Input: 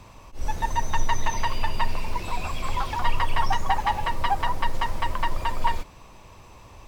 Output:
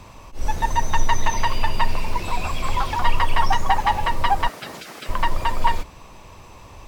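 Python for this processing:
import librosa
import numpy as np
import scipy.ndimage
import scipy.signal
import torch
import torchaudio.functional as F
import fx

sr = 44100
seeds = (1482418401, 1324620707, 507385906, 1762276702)

y = fx.hum_notches(x, sr, base_hz=60, count=2)
y = fx.spec_gate(y, sr, threshold_db=-30, keep='weak', at=(4.47, 5.08), fade=0.02)
y = y * librosa.db_to_amplitude(4.5)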